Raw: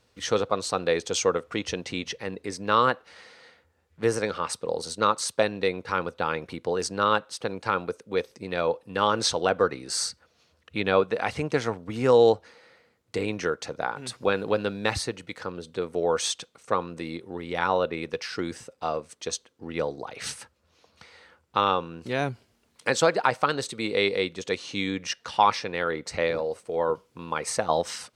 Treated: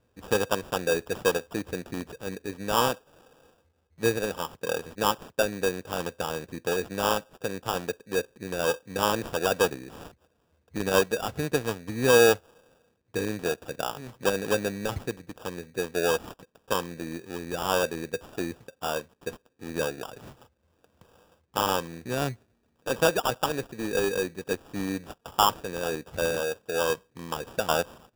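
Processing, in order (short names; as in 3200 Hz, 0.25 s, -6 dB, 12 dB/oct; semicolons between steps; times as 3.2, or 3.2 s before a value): median filter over 25 samples; sample-rate reducer 2100 Hz, jitter 0%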